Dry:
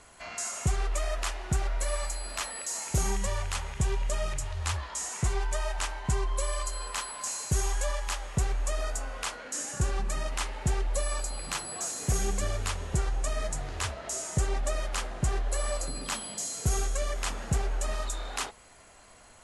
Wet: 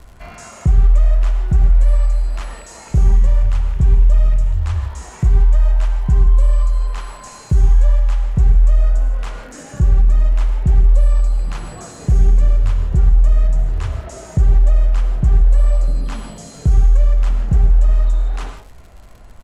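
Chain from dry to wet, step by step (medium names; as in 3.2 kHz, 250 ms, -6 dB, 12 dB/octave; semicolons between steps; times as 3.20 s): RIAA curve playback; gated-style reverb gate 190 ms flat, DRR 6.5 dB; crackle 130 per s -40 dBFS; resampled via 32 kHz; in parallel at +1.5 dB: compression, threshold -24 dBFS, peak gain reduction 17.5 dB; on the sum: trim -3 dB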